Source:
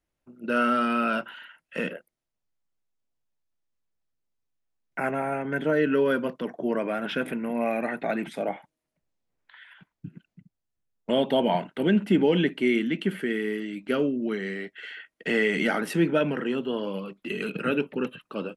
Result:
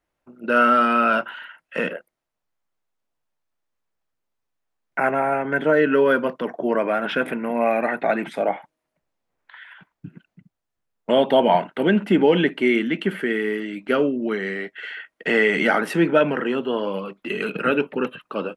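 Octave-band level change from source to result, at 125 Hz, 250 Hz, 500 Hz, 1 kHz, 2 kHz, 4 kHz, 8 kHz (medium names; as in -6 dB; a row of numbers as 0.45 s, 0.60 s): +1.5 dB, +3.0 dB, +6.5 dB, +8.5 dB, +7.0 dB, +4.0 dB, no reading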